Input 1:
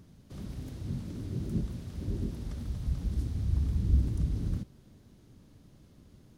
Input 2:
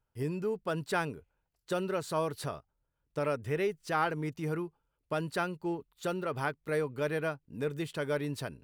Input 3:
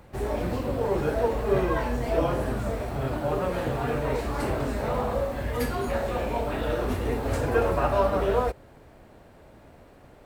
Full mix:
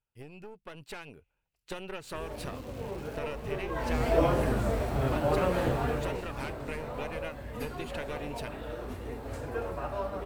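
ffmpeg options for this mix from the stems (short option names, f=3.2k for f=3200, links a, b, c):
-filter_complex "[0:a]acrusher=bits=6:mix=0:aa=0.000001,adelay=1900,volume=-18dB[a];[1:a]aeval=exprs='0.15*(cos(1*acos(clip(val(0)/0.15,-1,1)))-cos(1*PI/2))+0.0237*(cos(6*acos(clip(val(0)/0.15,-1,1)))-cos(6*PI/2))':c=same,volume=-10dB[b];[2:a]adelay=2000,volume=-7.5dB,afade=t=in:st=3.67:d=0.36:silence=0.223872,afade=t=out:st=5.65:d=0.59:silence=0.266073[c];[a][b]amix=inputs=2:normalize=0,equalizer=f=2.6k:w=2.5:g=10,acompressor=threshold=-42dB:ratio=6,volume=0dB[d];[c][d]amix=inputs=2:normalize=0,dynaudnorm=f=230:g=9:m=7.5dB"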